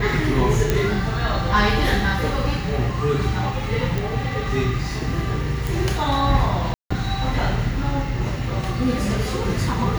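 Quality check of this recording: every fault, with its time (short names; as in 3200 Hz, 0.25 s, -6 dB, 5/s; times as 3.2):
0.7 pop -5 dBFS
3.98 pop
5.67 pop
6.74–6.91 gap 0.165 s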